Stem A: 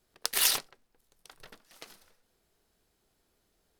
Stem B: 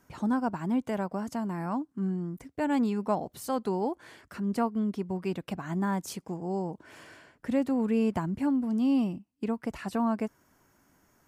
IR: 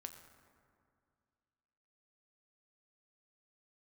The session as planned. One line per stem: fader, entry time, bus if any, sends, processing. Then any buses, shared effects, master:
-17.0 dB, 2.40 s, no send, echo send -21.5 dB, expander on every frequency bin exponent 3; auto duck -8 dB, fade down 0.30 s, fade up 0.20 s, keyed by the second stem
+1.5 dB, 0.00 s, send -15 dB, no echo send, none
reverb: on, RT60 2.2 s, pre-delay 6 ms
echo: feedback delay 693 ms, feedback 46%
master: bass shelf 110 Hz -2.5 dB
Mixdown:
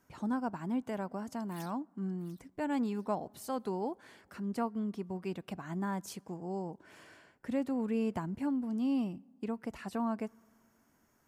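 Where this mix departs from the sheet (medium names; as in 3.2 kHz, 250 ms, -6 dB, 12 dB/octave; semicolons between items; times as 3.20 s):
stem A: entry 2.40 s -> 1.15 s; stem B +1.5 dB -> -6.5 dB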